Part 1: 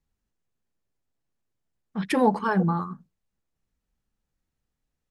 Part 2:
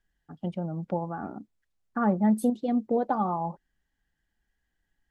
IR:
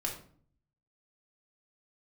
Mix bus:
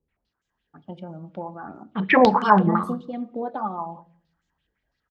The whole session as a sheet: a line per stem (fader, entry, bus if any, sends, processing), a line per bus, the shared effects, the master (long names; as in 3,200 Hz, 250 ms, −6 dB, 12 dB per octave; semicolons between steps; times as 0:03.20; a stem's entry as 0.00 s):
+0.5 dB, 0.00 s, send −13.5 dB, de-essing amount 70%; low-pass on a step sequencer 12 Hz 450–7,000 Hz
−6.5 dB, 0.45 s, send −10 dB, no processing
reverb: on, RT60 0.50 s, pre-delay 3 ms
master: high-pass filter 41 Hz; parametric band 10,000 Hz −10.5 dB 0.76 octaves; auto-filter bell 5.5 Hz 920–3,900 Hz +10 dB